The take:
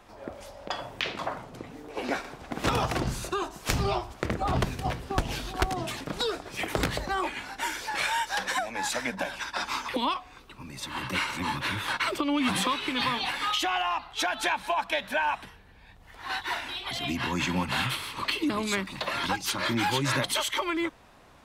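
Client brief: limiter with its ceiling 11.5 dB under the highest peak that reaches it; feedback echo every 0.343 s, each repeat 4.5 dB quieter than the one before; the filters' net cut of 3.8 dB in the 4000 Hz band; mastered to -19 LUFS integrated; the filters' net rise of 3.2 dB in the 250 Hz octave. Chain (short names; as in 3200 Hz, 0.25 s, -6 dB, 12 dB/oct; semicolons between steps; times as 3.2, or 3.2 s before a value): bell 250 Hz +4 dB; bell 4000 Hz -5 dB; limiter -22.5 dBFS; feedback echo 0.343 s, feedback 60%, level -4.5 dB; gain +12 dB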